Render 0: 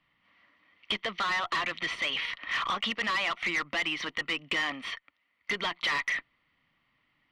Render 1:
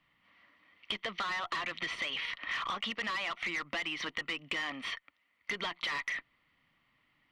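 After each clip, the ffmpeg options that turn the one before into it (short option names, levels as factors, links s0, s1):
-af "acompressor=threshold=0.0224:ratio=6"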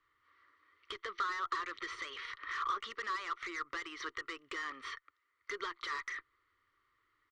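-af "firequalizer=gain_entry='entry(110,0);entry(160,-26);entry(380,8);entry(690,-16);entry(1200,9);entry(2600,-10);entry(3900,-1);entry(6900,2);entry(11000,-8)':delay=0.05:min_phase=1,volume=0.596"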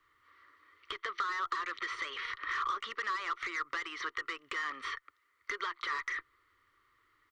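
-filter_complex "[0:a]acrossover=split=560|3200[s0][s1][s2];[s0]acompressor=threshold=0.001:ratio=4[s3];[s1]acompressor=threshold=0.0126:ratio=4[s4];[s2]acompressor=threshold=0.00141:ratio=4[s5];[s3][s4][s5]amix=inputs=3:normalize=0,volume=2"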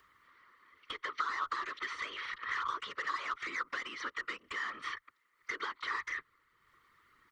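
-af "acompressor=mode=upward:threshold=0.00126:ratio=2.5,afftfilt=real='hypot(re,im)*cos(2*PI*random(0))':imag='hypot(re,im)*sin(2*PI*random(1))':win_size=512:overlap=0.75,volume=1.68"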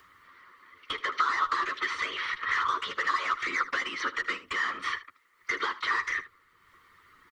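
-af "aecho=1:1:11|77:0.422|0.168,volume=2.37"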